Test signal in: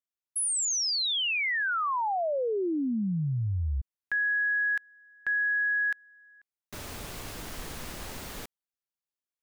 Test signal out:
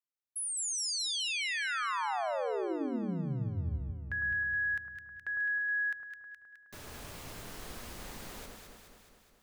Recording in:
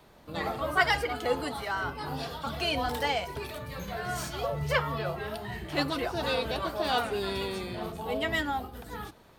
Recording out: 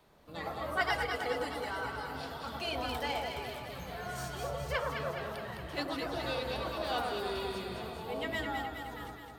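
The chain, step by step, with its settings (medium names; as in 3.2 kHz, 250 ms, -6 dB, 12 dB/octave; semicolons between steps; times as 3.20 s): hum notches 50/100/150/200/250/300/350 Hz; echo whose repeats swap between lows and highs 105 ms, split 1.4 kHz, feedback 78%, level -2.5 dB; trim -7.5 dB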